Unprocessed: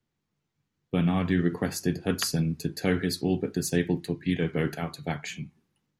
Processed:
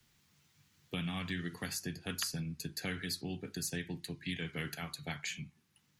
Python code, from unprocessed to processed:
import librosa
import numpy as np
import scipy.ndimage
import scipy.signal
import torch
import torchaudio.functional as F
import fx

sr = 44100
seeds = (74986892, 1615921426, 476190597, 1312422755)

y = fx.tone_stack(x, sr, knobs='5-5-5')
y = fx.band_squash(y, sr, depth_pct=70)
y = F.gain(torch.from_numpy(y), 3.0).numpy()